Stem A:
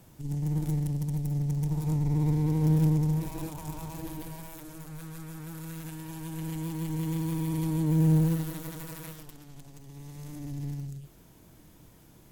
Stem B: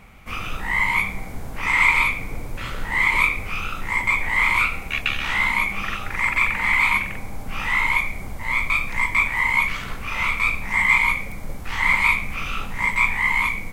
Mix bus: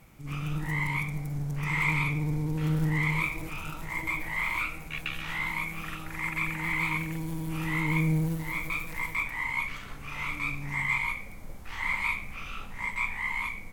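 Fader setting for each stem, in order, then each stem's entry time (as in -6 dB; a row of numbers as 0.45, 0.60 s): -4.0, -11.5 dB; 0.00, 0.00 s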